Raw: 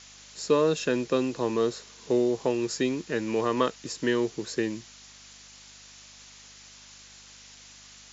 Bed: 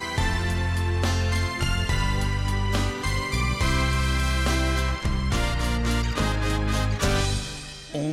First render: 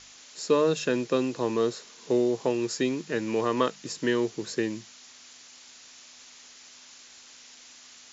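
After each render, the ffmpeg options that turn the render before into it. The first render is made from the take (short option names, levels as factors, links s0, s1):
-af "bandreject=f=50:t=h:w=4,bandreject=f=100:t=h:w=4,bandreject=f=150:t=h:w=4,bandreject=f=200:t=h:w=4"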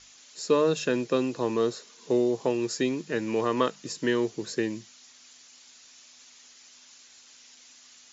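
-af "afftdn=nr=6:nf=-51"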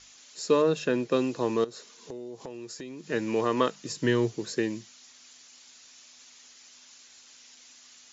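-filter_complex "[0:a]asettb=1/sr,asplit=3[s0][s1][s2];[s0]atrim=end=0.624[s3];[s1]atrim=start=0.62:end=1.12,asetpts=PTS-STARTPTS,afade=t=in:d=0.004:c=qsin,afade=t=out:st=0.496:d=0.004:c=qsin,highshelf=f=4400:g=-8.5[s4];[s2]atrim=start=1.116[s5];[s3][s4]acrossfade=d=0.004:c1=hsin:c2=qsin[s6];[s6][s5]acrossfade=d=0.004:c1=qsin:c2=hsin,asettb=1/sr,asplit=3[s7][s8][s9];[s7]atrim=end=1.644[s10];[s8]atrim=start=1.64:end=3.1,asetpts=PTS-STARTPTS,afade=t=in:d=0.004:c=qsin,afade=t=out:st=1.456:d=0.004:c=qsin,acompressor=threshold=0.0126:ratio=5:attack=3.2:release=140:knee=1:detection=peak[s11];[s9]atrim=start=3.096[s12];[s10][s11]acrossfade=d=0.004:c1=hsin:c2=qsin[s13];[s13][s12]acrossfade=d=0.004:c1=qsin:c2=hsin,asettb=1/sr,asplit=3[s14][s15][s16];[s14]atrim=end=3.884[s17];[s15]atrim=start=3.88:end=4.36,asetpts=PTS-STARTPTS,afade=t=in:d=0.004:c=qsin,afade=t=out:st=0.476:d=0.004:c=qsin,equalizer=f=120:t=o:w=0.77:g=10[s18];[s16]atrim=start=4.356[s19];[s17][s18]acrossfade=d=0.004:c1=hsin:c2=qsin[s20];[s20][s19]acrossfade=d=0.004:c1=qsin:c2=hsin"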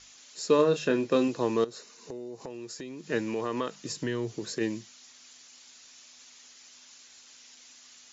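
-filter_complex "[0:a]asettb=1/sr,asplit=3[s0][s1][s2];[s0]atrim=end=0.564[s3];[s1]atrim=start=0.56:end=1.28,asetpts=PTS-STARTPTS,afade=t=in:d=0.004:c=qsin,afade=t=out:st=0.716:d=0.004:c=qsin,asplit=2[s4][s5];[s5]adelay=27,volume=0.398[s6];[s4][s6]amix=inputs=2:normalize=0,atrim=end_sample=31752[s7];[s2]atrim=start=1.276[s8];[s3][s7]acrossfade=d=0.004:c1=hsin:c2=qsin[s9];[s9][s8]acrossfade=d=0.004:c1=qsin:c2=hsin,asettb=1/sr,asplit=3[s10][s11][s12];[s10]atrim=end=1.784[s13];[s11]atrim=start=1.78:end=2.5,asetpts=PTS-STARTPTS,afade=t=in:d=0.004:c=qsin,afade=t=out:st=0.716:d=0.004:c=qsin,bandreject=f=3300:w=5.8[s14];[s12]atrim=start=2.496[s15];[s13][s14]acrossfade=d=0.004:c1=hsin:c2=qsin[s16];[s16][s15]acrossfade=d=0.004:c1=qsin:c2=hsin,asplit=3[s17][s18][s19];[s17]afade=t=out:st=3.21:d=0.02[s20];[s18]acompressor=threshold=0.0355:ratio=2.5:attack=3.2:release=140:knee=1:detection=peak,afade=t=in:st=3.21:d=0.02,afade=t=out:st=4.6:d=0.02[s21];[s19]afade=t=in:st=4.6:d=0.02[s22];[s20][s21][s22]amix=inputs=3:normalize=0"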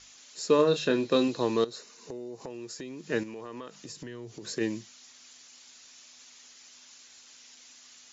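-filter_complex "[0:a]asettb=1/sr,asplit=3[s0][s1][s2];[s0]atrim=end=0.674[s3];[s1]atrim=start=0.67:end=1.76,asetpts=PTS-STARTPTS,afade=t=in:d=0.004:c=qsin,afade=t=out:st=1.086:d=0.004:c=qsin,equalizer=f=4000:t=o:w=0.29:g=10[s4];[s2]atrim=start=1.756[s5];[s3][s4]acrossfade=d=0.004:c1=hsin:c2=qsin[s6];[s6][s5]acrossfade=d=0.004:c1=qsin:c2=hsin,asettb=1/sr,asplit=3[s7][s8][s9];[s7]atrim=end=3.234[s10];[s8]atrim=start=3.23:end=4.45,asetpts=PTS-STARTPTS,afade=t=in:d=0.004:c=qsin,afade=t=out:st=1.216:d=0.004:c=qsin,acompressor=threshold=0.00794:ratio=2.5:attack=3.2:release=140:knee=1:detection=peak[s11];[s9]atrim=start=4.446[s12];[s10][s11]acrossfade=d=0.004:c1=hsin:c2=qsin[s13];[s13][s12]acrossfade=d=0.004:c1=qsin:c2=hsin"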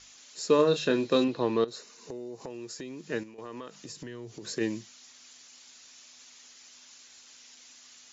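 -filter_complex "[0:a]asettb=1/sr,asplit=3[s0][s1][s2];[s0]atrim=end=1.244[s3];[s1]atrim=start=1.24:end=1.68,asetpts=PTS-STARTPTS,afade=t=in:d=0.004:c=qsin,afade=t=out:st=0.436:d=0.004:c=qsin,lowpass=3200[s4];[s2]atrim=start=1.676[s5];[s3][s4]acrossfade=d=0.004:c1=hsin:c2=qsin[s6];[s6][s5]acrossfade=d=0.004:c1=qsin:c2=hsin,asplit=2[s7][s8];[s7]atrim=end=3.38,asetpts=PTS-STARTPTS,afade=t=out:st=2.98:d=0.4:silence=0.281838[s9];[s8]atrim=start=3.38,asetpts=PTS-STARTPTS,afade=t=in:d=0.004:c=hsin:silence=0.281838[s10];[s9][s10]concat=n=2:v=0:a=1"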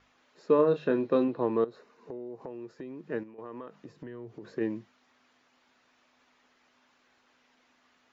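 -af "lowpass=1400,lowshelf=f=110:g=-6"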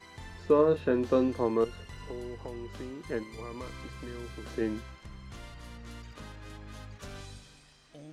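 -filter_complex "[1:a]volume=0.0841[s0];[0:a][s0]amix=inputs=2:normalize=0"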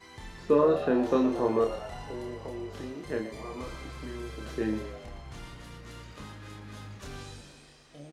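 -filter_complex "[0:a]asplit=2[s0][s1];[s1]adelay=28,volume=0.668[s2];[s0][s2]amix=inputs=2:normalize=0,asplit=8[s3][s4][s5][s6][s7][s8][s9][s10];[s4]adelay=116,afreqshift=92,volume=0.224[s11];[s5]adelay=232,afreqshift=184,volume=0.136[s12];[s6]adelay=348,afreqshift=276,volume=0.0832[s13];[s7]adelay=464,afreqshift=368,volume=0.0507[s14];[s8]adelay=580,afreqshift=460,volume=0.0309[s15];[s9]adelay=696,afreqshift=552,volume=0.0188[s16];[s10]adelay=812,afreqshift=644,volume=0.0115[s17];[s3][s11][s12][s13][s14][s15][s16][s17]amix=inputs=8:normalize=0"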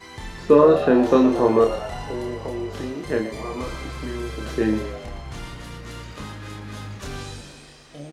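-af "volume=2.82"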